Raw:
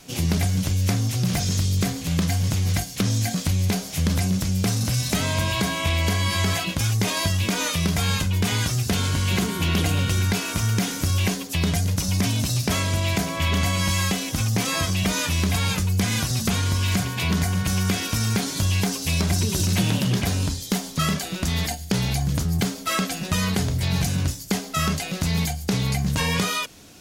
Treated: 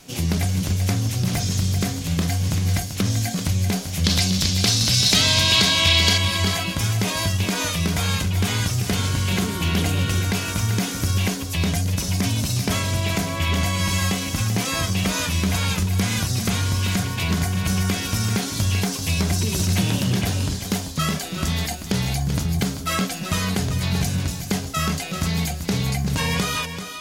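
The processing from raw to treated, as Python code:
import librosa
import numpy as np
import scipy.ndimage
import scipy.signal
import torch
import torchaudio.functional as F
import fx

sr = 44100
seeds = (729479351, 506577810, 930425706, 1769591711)

y = fx.peak_eq(x, sr, hz=4100.0, db=15.0, octaves=1.5, at=(4.04, 6.18))
y = y + 10.0 ** (-9.0 / 20.0) * np.pad(y, (int(388 * sr / 1000.0), 0))[:len(y)]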